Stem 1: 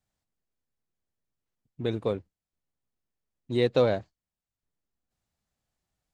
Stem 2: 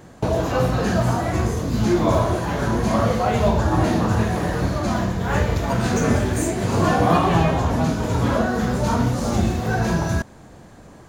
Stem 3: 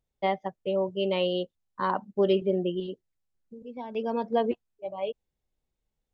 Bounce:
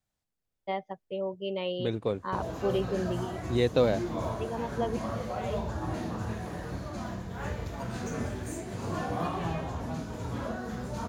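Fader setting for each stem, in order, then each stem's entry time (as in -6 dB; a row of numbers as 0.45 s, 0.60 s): -1.5 dB, -15.0 dB, -6.0 dB; 0.00 s, 2.10 s, 0.45 s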